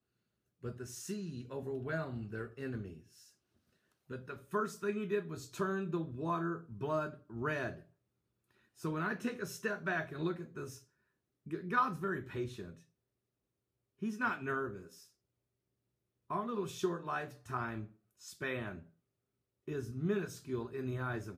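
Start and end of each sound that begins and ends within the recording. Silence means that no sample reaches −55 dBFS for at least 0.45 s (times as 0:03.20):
0:00.63–0:03.31
0:04.10–0:07.83
0:08.77–0:10.83
0:11.46–0:12.82
0:14.02–0:15.07
0:16.30–0:18.86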